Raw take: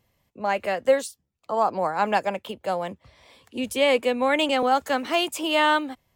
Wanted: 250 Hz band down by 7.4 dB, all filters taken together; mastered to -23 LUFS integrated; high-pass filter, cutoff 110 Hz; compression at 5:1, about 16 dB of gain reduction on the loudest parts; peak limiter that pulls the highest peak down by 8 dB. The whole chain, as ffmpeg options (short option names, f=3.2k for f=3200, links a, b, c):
-af "highpass=110,equalizer=f=250:t=o:g=-9,acompressor=threshold=-34dB:ratio=5,volume=18dB,alimiter=limit=-13dB:level=0:latency=1"